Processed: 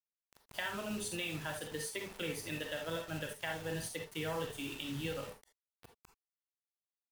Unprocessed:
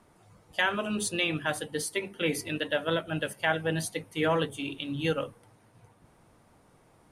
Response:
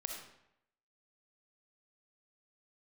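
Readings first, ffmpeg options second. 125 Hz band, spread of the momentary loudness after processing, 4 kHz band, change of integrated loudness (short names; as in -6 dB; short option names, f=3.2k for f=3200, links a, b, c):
-8.5 dB, 3 LU, -8.5 dB, -9.5 dB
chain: -filter_complex "[0:a]acrossover=split=120[a][b];[b]acompressor=threshold=-38dB:ratio=4[c];[a][c]amix=inputs=2:normalize=0,acrusher=bits=7:mix=0:aa=0.000001[d];[1:a]atrim=start_sample=2205,afade=t=out:st=0.17:d=0.01,atrim=end_sample=7938,asetrate=61740,aresample=44100[e];[d][e]afir=irnorm=-1:irlink=0,volume=4dB"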